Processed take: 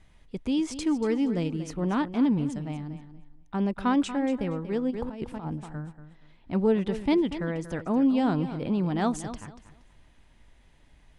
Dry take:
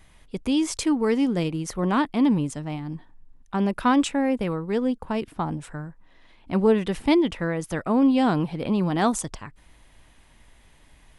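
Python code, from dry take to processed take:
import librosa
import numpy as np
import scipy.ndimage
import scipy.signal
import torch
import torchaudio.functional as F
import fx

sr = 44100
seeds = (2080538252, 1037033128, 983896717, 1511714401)

y = scipy.signal.sosfilt(scipy.signal.butter(2, 7900.0, 'lowpass', fs=sr, output='sos'), x)
y = fx.echo_feedback(y, sr, ms=236, feedback_pct=22, wet_db=-12.5)
y = fx.over_compress(y, sr, threshold_db=-30.0, ratio=-0.5, at=(4.9, 5.47), fade=0.02)
y = fx.low_shelf(y, sr, hz=480.0, db=4.5)
y = fx.notch(y, sr, hz=1100.0, q=21.0)
y = y * 10.0 ** (-7.0 / 20.0)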